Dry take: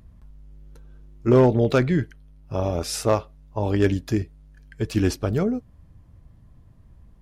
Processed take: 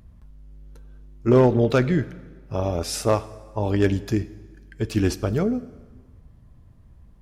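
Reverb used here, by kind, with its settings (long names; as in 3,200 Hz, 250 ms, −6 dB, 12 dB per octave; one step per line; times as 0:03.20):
dense smooth reverb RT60 1.5 s, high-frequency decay 0.85×, DRR 15.5 dB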